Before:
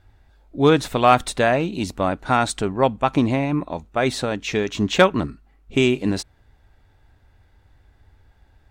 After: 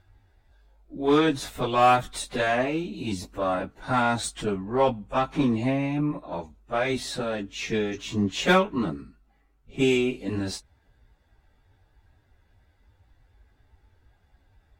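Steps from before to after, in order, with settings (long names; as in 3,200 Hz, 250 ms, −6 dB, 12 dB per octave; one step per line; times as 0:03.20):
harmonic generator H 6 −27 dB, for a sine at −2.5 dBFS
time stretch by phase vocoder 1.7×
level −2.5 dB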